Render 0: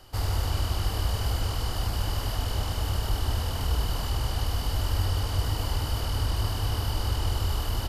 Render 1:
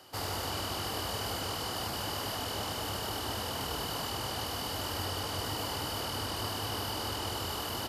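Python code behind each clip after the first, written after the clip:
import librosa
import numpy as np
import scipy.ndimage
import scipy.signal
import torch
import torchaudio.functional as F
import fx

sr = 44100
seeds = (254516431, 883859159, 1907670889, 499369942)

y = scipy.signal.sosfilt(scipy.signal.butter(2, 200.0, 'highpass', fs=sr, output='sos'), x)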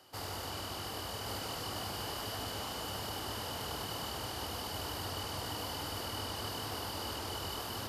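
y = x + 10.0 ** (-4.0 / 20.0) * np.pad(x, (int(1132 * sr / 1000.0), 0))[:len(x)]
y = y * 10.0 ** (-5.5 / 20.0)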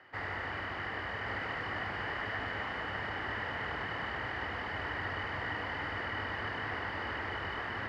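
y = fx.lowpass_res(x, sr, hz=1900.0, q=7.6)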